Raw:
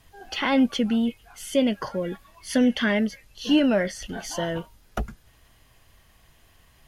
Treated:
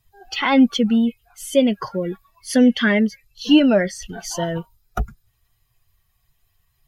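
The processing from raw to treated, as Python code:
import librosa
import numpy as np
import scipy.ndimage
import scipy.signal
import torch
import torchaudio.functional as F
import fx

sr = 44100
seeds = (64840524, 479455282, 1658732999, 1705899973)

y = fx.bin_expand(x, sr, power=1.5)
y = y * 10.0 ** (7.5 / 20.0)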